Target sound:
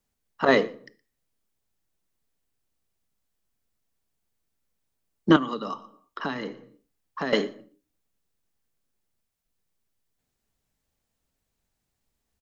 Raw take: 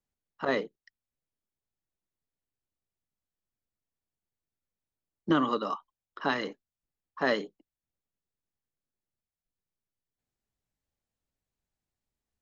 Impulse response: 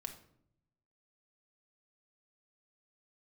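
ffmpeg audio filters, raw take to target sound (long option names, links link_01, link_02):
-filter_complex "[0:a]aecho=1:1:118:0.0668,asplit=2[link_01][link_02];[1:a]atrim=start_sample=2205,afade=type=out:start_time=0.4:duration=0.01,atrim=end_sample=18081,highshelf=frequency=4600:gain=7[link_03];[link_02][link_03]afir=irnorm=-1:irlink=0,volume=-6dB[link_04];[link_01][link_04]amix=inputs=2:normalize=0,asettb=1/sr,asplit=3[link_05][link_06][link_07];[link_05]atrim=end=5.364[link_08];[link_06]atrim=start=5.36:end=7.33,asetpts=PTS-STARTPTS,afade=type=in:duration=0.004:curve=qsin,afade=type=out:start_time=1.966:duration=0.004:curve=qsin,acrossover=split=280|2500[link_09][link_10][link_11];[link_09]acompressor=threshold=-42dB:ratio=4[link_12];[link_10]acompressor=threshold=-39dB:ratio=4[link_13];[link_11]acompressor=threshold=-53dB:ratio=4[link_14];[link_12][link_13][link_14]amix=inputs=3:normalize=0[link_15];[link_07]atrim=start=7.326[link_16];[link_08][link_15]acrossfade=duration=0.004:curve1=hsin:curve2=qsin[link_17];[link_17][link_16]acrossfade=duration=0.004:curve1=qsin:curve2=hsin,volume=6.5dB"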